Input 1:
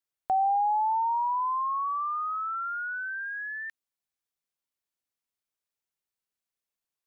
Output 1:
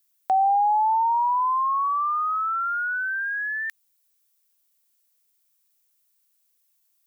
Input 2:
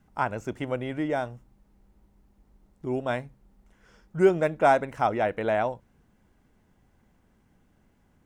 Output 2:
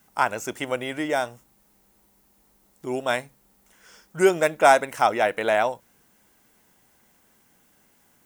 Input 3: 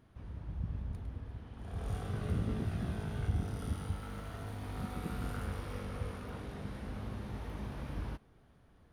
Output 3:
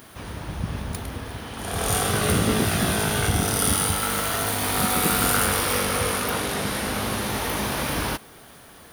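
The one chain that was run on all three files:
RIAA equalisation recording
loudness normalisation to −23 LKFS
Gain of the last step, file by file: +5.5, +5.5, +22.0 decibels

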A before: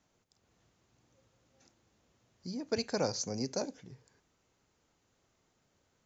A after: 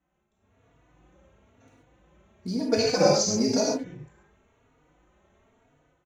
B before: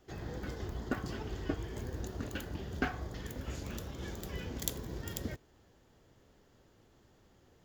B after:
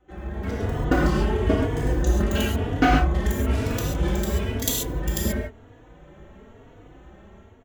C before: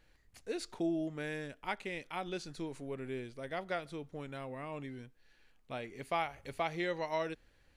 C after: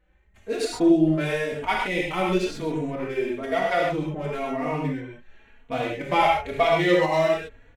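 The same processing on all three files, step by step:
adaptive Wiener filter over 9 samples
automatic gain control gain up to 12 dB
reverb whose tail is shaped and stops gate 160 ms flat, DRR −3 dB
dynamic equaliser 1,600 Hz, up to −4 dB, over −40 dBFS, Q 4.4
barber-pole flanger 3.5 ms +1 Hz
loudness normalisation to −24 LKFS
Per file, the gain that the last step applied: −1.0, +4.0, +2.5 decibels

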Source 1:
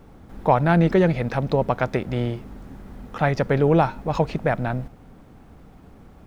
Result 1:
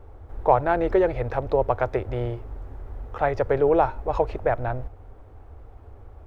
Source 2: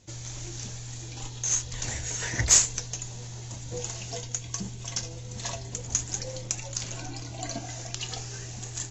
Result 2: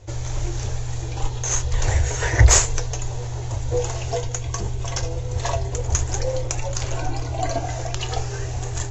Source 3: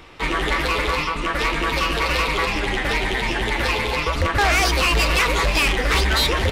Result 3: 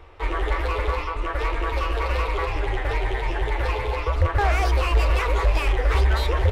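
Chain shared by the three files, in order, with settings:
drawn EQ curve 100 Hz 0 dB, 170 Hz −27 dB, 400 Hz −5 dB, 880 Hz −6 dB, 4,700 Hz −18 dB
loudness normalisation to −24 LKFS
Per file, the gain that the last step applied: +6.0, +19.5, +3.0 decibels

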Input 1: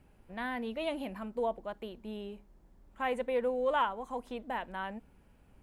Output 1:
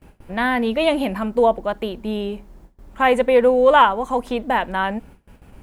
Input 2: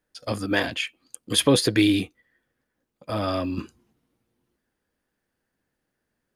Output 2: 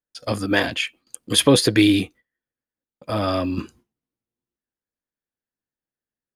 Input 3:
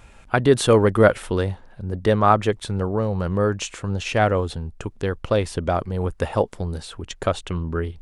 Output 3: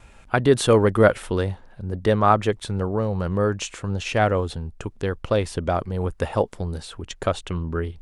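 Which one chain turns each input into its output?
noise gate with hold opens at −52 dBFS
normalise the peak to −2 dBFS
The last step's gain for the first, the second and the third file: +17.0, +3.5, −1.0 decibels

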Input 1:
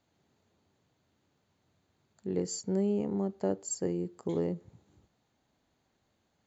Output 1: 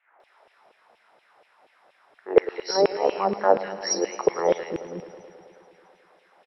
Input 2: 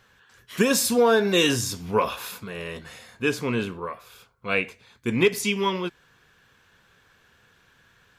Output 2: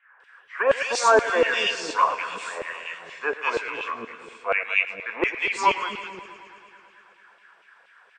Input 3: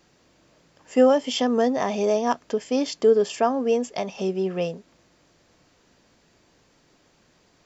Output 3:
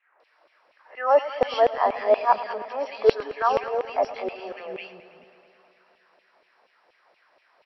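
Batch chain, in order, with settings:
hearing-aid frequency compression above 3,200 Hz 1.5 to 1
three-band delay without the direct sound mids, highs, lows 200/450 ms, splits 300/2,000 Hz
auto-filter high-pass saw down 4.2 Hz 480–2,900 Hz
high shelf with overshoot 2,800 Hz −7 dB, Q 1.5
feedback echo with a swinging delay time 108 ms, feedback 77%, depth 56 cents, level −16 dB
loudness normalisation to −24 LKFS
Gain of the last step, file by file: +18.0, +3.0, 0.0 decibels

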